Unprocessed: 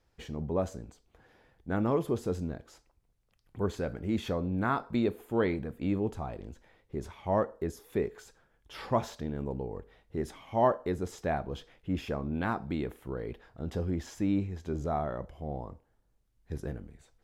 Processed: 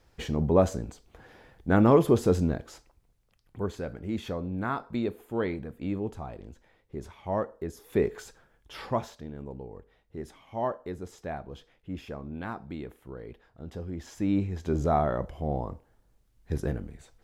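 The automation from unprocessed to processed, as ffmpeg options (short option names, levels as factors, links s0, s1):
-af "volume=31.6,afade=t=out:st=2.5:d=1.2:silence=0.298538,afade=t=in:st=7.72:d=0.42:silence=0.354813,afade=t=out:st=8.14:d=1.02:silence=0.237137,afade=t=in:st=13.92:d=0.89:silence=0.251189"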